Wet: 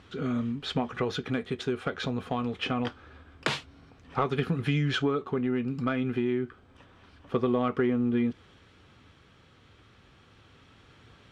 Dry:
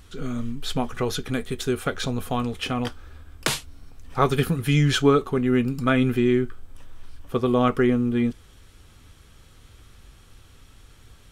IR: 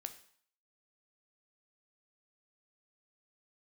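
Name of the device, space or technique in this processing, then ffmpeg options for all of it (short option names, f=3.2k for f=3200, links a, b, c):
AM radio: -af "highpass=120,lowpass=3.4k,acompressor=threshold=-23dB:ratio=6,asoftclip=type=tanh:threshold=-13dB,tremolo=f=0.26:d=0.28,volume=1.5dB"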